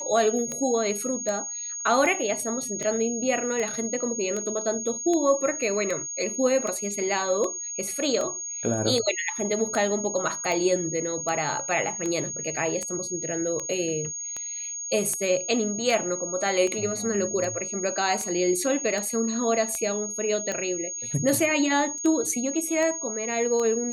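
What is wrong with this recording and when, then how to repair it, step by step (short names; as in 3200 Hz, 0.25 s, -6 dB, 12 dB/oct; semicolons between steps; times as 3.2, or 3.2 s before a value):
tick 78 rpm -17 dBFS
tone 6600 Hz -31 dBFS
21.98 gap 3.9 ms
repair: de-click; notch 6600 Hz, Q 30; interpolate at 21.98, 3.9 ms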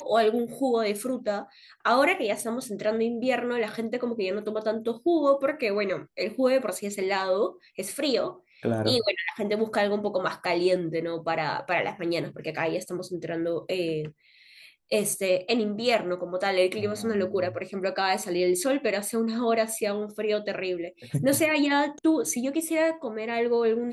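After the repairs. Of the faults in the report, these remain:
none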